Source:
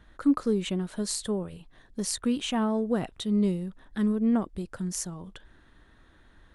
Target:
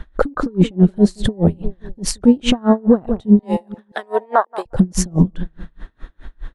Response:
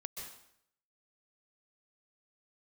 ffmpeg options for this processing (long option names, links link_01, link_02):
-filter_complex "[0:a]lowpass=frequency=3300:poles=1,afwtdn=0.0178,asettb=1/sr,asplit=3[link_01][link_02][link_03];[link_01]atrim=end=3.394[link_04];[link_02]atrim=start=3.39:end=4.66,asetpts=PTS-STARTPTS,afade=type=in:duration=0.004:curve=qsin,afade=type=out:start_time=1.266:duration=0.004:curve=qsin,highpass=frequency=710:width=0.5412,highpass=frequency=710:width=1.3066[link_05];[link_03]atrim=start=4.656[link_06];[link_04][link_05]acrossfade=duration=0.004:curve1=hsin:curve2=qsin[link_07];[link_07][link_06]acrossfade=duration=0.004:curve1=qsin:curve2=hsin,acompressor=threshold=-29dB:ratio=6,asplit=2[link_08][link_09];[link_09]adelay=175,lowpass=frequency=1400:poles=1,volume=-21dB,asplit=2[link_10][link_11];[link_11]adelay=175,lowpass=frequency=1400:poles=1,volume=0.44,asplit=2[link_12][link_13];[link_13]adelay=175,lowpass=frequency=1400:poles=1,volume=0.44[link_14];[link_10][link_12][link_14]amix=inputs=3:normalize=0[link_15];[link_08][link_15]amix=inputs=2:normalize=0,alimiter=level_in=35.5dB:limit=-1dB:release=50:level=0:latency=1,aeval=exprs='val(0)*pow(10,-32*(0.5-0.5*cos(2*PI*4.8*n/s))/20)':channel_layout=same"